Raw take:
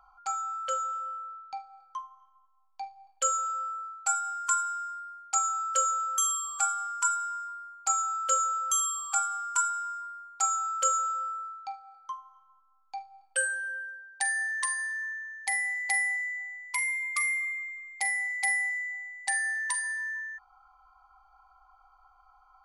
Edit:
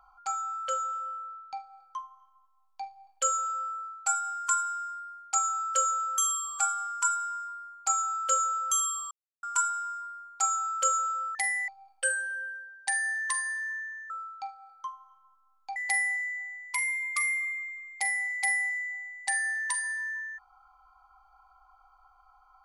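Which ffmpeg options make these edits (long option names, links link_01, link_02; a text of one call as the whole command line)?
ffmpeg -i in.wav -filter_complex "[0:a]asplit=7[link_01][link_02][link_03][link_04][link_05][link_06][link_07];[link_01]atrim=end=9.11,asetpts=PTS-STARTPTS,afade=type=out:start_time=9.106:duration=0.004:curve=hsin[link_08];[link_02]atrim=start=9.11:end=9.43,asetpts=PTS-STARTPTS,volume=0[link_09];[link_03]atrim=start=9.43:end=11.352,asetpts=PTS-STARTPTS,afade=type=in:duration=0.004:curve=hsin[link_10];[link_04]atrim=start=15.428:end=15.762[link_11];[link_05]atrim=start=13.008:end=15.432[link_12];[link_06]atrim=start=11.348:end=13.012[link_13];[link_07]atrim=start=15.758[link_14];[link_08][link_09][link_10]concat=n=3:v=0:a=1[link_15];[link_15][link_11]acrossfade=duration=0.004:curve1=hsin:curve2=hsin[link_16];[link_16][link_12]acrossfade=duration=0.004:curve1=hsin:curve2=hsin[link_17];[link_17][link_13]acrossfade=duration=0.004:curve1=hsin:curve2=hsin[link_18];[link_18][link_14]acrossfade=duration=0.004:curve1=hsin:curve2=hsin" out.wav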